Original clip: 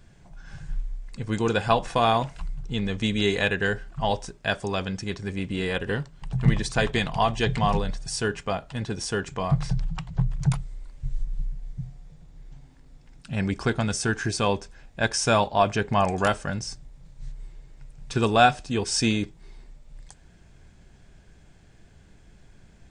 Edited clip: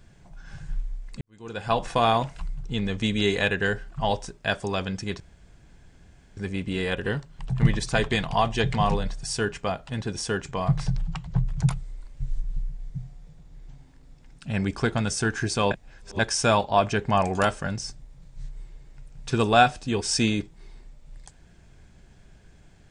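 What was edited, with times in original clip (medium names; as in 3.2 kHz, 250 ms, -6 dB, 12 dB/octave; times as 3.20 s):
1.21–1.82 s: fade in quadratic
5.20 s: insert room tone 1.17 s
14.54–15.02 s: reverse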